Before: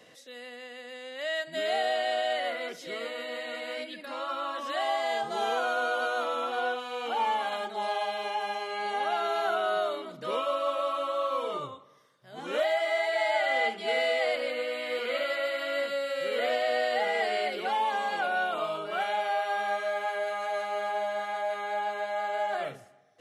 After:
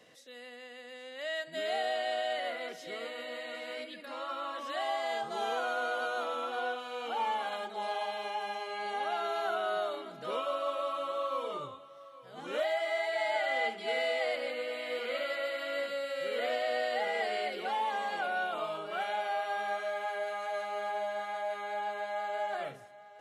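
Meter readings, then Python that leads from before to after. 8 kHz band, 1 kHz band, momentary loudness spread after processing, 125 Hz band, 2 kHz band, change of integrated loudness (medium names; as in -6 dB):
-4.5 dB, -4.5 dB, 9 LU, no reading, -4.5 dB, -4.5 dB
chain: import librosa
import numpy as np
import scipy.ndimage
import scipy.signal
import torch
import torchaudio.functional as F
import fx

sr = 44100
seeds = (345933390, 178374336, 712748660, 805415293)

y = x + 10.0 ** (-18.0 / 20.0) * np.pad(x, (int(818 * sr / 1000.0), 0))[:len(x)]
y = F.gain(torch.from_numpy(y), -4.5).numpy()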